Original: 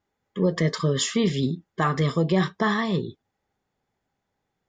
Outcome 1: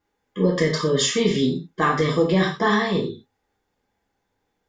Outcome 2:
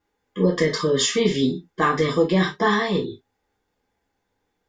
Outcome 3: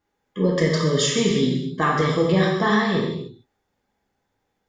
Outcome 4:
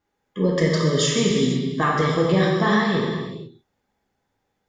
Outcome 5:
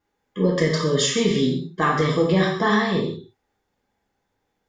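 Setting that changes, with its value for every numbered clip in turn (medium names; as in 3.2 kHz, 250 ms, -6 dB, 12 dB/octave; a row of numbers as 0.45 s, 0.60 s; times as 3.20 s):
gated-style reverb, gate: 140 ms, 90 ms, 340 ms, 520 ms, 220 ms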